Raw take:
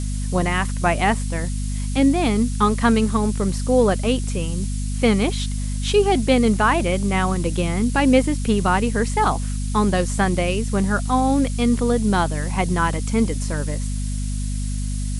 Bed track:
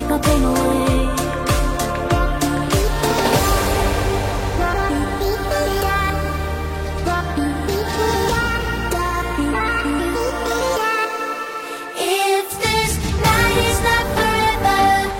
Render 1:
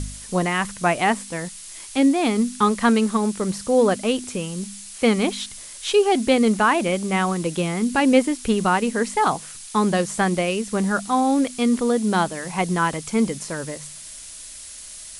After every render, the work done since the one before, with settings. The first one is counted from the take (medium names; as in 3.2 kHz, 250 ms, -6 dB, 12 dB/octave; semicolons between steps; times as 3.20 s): de-hum 50 Hz, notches 5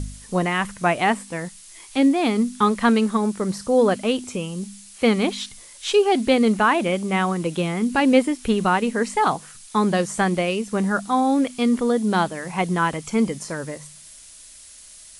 noise print and reduce 6 dB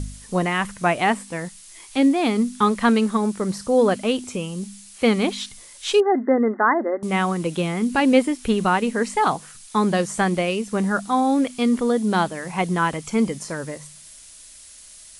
6.00–7.03 s: brick-wall FIR band-pass 220–2100 Hz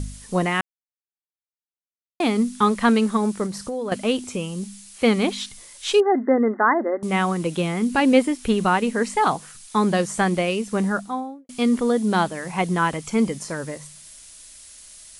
0.61–2.20 s: mute; 3.46–3.92 s: compression, threshold -25 dBFS; 10.79–11.49 s: studio fade out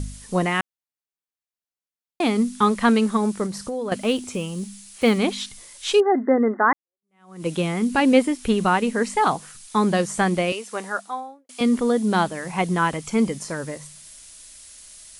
3.97–5.18 s: block-companded coder 7-bit; 6.73–7.47 s: fade in exponential; 10.52–11.61 s: high-pass 540 Hz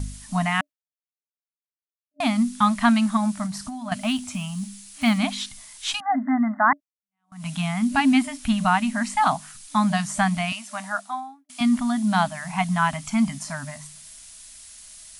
gate with hold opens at -36 dBFS; FFT band-reject 280–600 Hz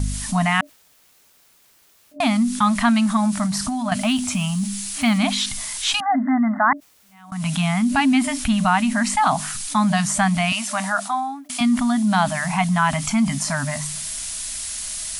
level flattener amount 50%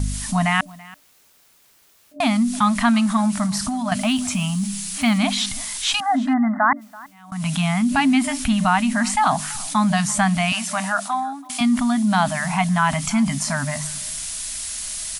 delay 333 ms -22 dB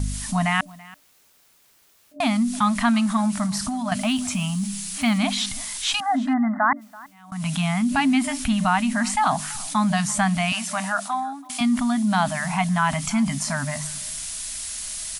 trim -2.5 dB